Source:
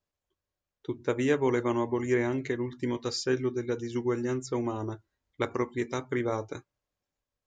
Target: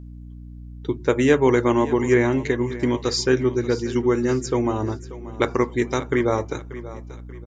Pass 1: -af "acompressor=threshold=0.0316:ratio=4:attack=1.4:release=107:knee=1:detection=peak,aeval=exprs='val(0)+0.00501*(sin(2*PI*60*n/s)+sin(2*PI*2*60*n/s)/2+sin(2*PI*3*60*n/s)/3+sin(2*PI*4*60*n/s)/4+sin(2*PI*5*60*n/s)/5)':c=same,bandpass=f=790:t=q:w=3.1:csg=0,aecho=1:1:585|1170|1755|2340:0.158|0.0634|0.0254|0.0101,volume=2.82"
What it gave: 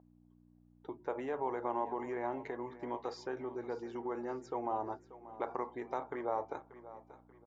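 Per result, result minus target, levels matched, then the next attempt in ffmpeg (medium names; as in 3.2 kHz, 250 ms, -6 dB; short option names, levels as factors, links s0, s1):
compression: peak gain reduction +10.5 dB; 1 kHz band +9.0 dB
-af "aeval=exprs='val(0)+0.00501*(sin(2*PI*60*n/s)+sin(2*PI*2*60*n/s)/2+sin(2*PI*3*60*n/s)/3+sin(2*PI*4*60*n/s)/4+sin(2*PI*5*60*n/s)/5)':c=same,bandpass=f=790:t=q:w=3.1:csg=0,aecho=1:1:585|1170|1755|2340:0.158|0.0634|0.0254|0.0101,volume=2.82"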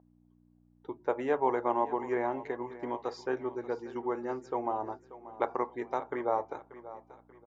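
1 kHz band +8.5 dB
-af "aeval=exprs='val(0)+0.00501*(sin(2*PI*60*n/s)+sin(2*PI*2*60*n/s)/2+sin(2*PI*3*60*n/s)/3+sin(2*PI*4*60*n/s)/4+sin(2*PI*5*60*n/s)/5)':c=same,aecho=1:1:585|1170|1755|2340:0.158|0.0634|0.0254|0.0101,volume=2.82"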